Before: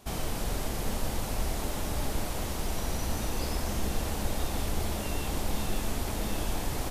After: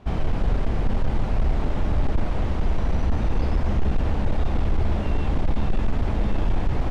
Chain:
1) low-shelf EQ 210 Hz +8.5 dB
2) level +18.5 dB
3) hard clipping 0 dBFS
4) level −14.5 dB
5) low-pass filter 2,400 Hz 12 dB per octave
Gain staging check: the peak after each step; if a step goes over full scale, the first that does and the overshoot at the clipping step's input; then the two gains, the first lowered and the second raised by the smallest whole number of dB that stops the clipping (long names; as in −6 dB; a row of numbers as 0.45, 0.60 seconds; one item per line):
−10.0, +8.5, 0.0, −14.5, −14.5 dBFS
step 2, 8.5 dB
step 2 +9.5 dB, step 4 −5.5 dB